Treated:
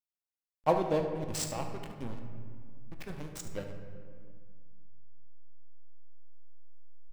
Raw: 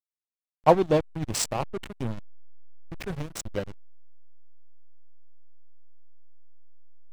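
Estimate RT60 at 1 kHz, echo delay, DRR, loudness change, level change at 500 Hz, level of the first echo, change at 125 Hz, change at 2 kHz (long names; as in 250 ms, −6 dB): 1.9 s, 73 ms, 3.5 dB, −7.5 dB, −7.0 dB, −12.0 dB, −7.0 dB, −7.5 dB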